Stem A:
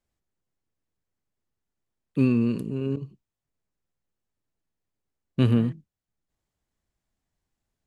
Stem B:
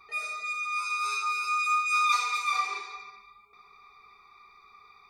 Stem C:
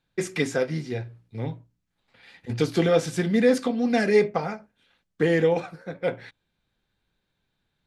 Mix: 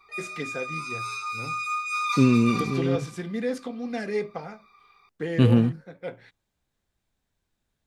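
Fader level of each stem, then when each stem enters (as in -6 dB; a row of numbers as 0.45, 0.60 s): +2.5, -3.0, -9.0 dB; 0.00, 0.00, 0.00 s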